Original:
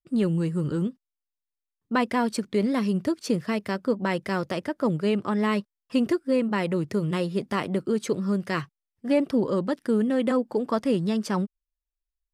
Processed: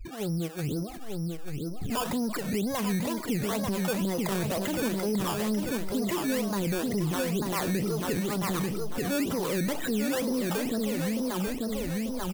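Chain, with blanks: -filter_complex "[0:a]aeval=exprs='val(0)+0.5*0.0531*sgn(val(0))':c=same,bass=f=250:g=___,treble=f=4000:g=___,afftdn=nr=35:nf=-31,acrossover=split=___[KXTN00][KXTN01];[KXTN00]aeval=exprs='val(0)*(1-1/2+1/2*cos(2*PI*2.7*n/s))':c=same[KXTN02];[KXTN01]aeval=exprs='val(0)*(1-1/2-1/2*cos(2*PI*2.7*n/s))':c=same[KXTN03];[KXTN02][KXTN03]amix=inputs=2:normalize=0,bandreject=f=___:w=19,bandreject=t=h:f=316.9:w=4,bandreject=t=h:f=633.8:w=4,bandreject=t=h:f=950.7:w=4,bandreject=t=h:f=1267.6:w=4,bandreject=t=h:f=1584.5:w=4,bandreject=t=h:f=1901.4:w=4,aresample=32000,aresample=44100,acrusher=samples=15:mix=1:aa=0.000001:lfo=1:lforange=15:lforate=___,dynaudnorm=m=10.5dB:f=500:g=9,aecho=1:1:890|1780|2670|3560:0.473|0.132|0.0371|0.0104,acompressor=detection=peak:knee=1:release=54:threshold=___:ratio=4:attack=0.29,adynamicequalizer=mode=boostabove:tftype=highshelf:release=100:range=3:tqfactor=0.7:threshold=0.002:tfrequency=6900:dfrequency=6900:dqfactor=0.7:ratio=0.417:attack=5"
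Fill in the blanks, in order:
-2, -12, 480, 1800, 2.1, -27dB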